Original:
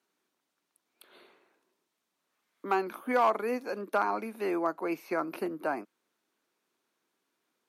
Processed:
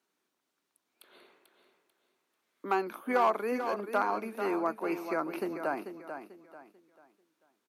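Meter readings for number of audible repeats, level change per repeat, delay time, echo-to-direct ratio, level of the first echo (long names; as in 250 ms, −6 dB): 3, −10.0 dB, 441 ms, −8.5 dB, −9.0 dB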